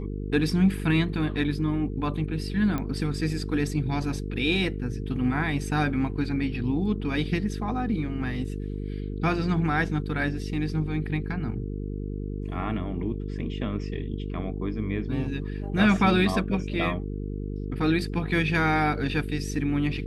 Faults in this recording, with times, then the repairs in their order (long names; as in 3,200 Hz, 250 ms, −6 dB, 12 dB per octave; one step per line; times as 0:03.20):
mains buzz 50 Hz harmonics 9 −32 dBFS
0:02.78: click −17 dBFS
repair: click removal
hum removal 50 Hz, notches 9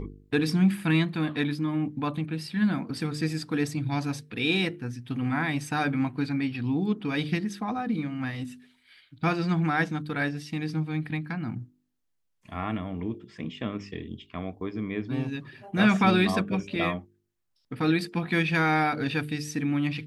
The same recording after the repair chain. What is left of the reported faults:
none of them is left